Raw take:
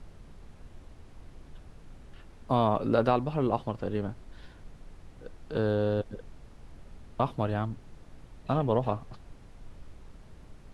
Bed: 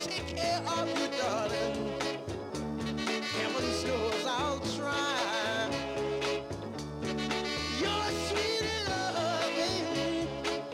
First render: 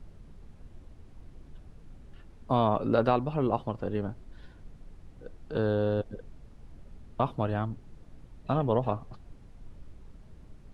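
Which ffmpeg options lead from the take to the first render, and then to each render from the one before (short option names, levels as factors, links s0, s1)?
-af "afftdn=nr=6:nf=-52"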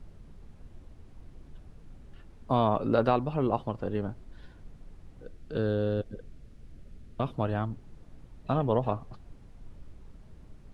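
-filter_complex "[0:a]asettb=1/sr,asplit=3[s0][s1][s2];[s0]atrim=end=5.254[s3];[s1]atrim=start=5.25:end=7.34,asetpts=PTS-STARTPTS,afade=t=in:d=0.004:c=qsin,afade=t=out:st=2.086:d=0.004:c=qsin,equalizer=f=900:t=o:w=0.8:g=-9.5[s4];[s2]atrim=start=7.336[s5];[s3][s4]acrossfade=d=0.004:c1=hsin:c2=qsin[s6];[s6][s5]acrossfade=d=0.004:c1=qsin:c2=hsin"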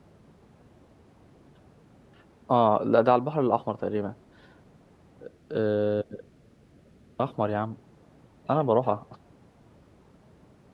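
-af "highpass=120,equalizer=f=700:t=o:w=2.4:g=5.5"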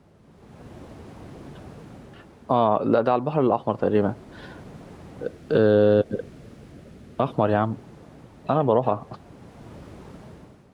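-af "dynaudnorm=f=150:g=7:m=5.01,alimiter=limit=0.376:level=0:latency=1:release=188"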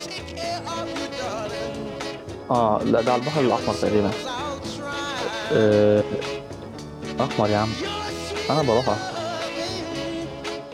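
-filter_complex "[1:a]volume=1.33[s0];[0:a][s0]amix=inputs=2:normalize=0"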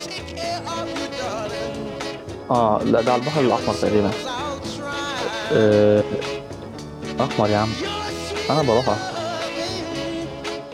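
-af "volume=1.26"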